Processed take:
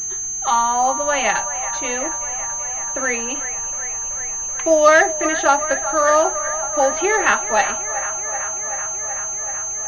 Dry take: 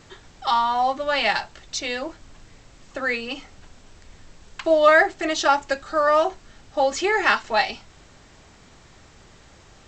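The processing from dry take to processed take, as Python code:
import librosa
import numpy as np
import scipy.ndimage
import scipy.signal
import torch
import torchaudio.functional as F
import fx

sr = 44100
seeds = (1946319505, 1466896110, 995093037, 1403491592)

y = fx.echo_wet_bandpass(x, sr, ms=380, feedback_pct=80, hz=1200.0, wet_db=-11.5)
y = fx.pwm(y, sr, carrier_hz=6300.0)
y = y * 10.0 ** (3.0 / 20.0)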